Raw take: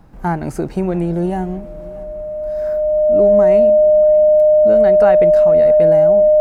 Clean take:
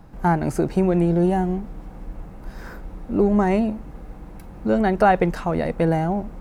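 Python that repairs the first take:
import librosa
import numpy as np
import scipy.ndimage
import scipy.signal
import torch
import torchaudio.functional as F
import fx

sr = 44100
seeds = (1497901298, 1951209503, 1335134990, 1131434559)

y = fx.notch(x, sr, hz=610.0, q=30.0)
y = fx.fix_echo_inverse(y, sr, delay_ms=632, level_db=-23.0)
y = fx.gain(y, sr, db=fx.steps((0.0, 0.0), (2.03, 3.0)))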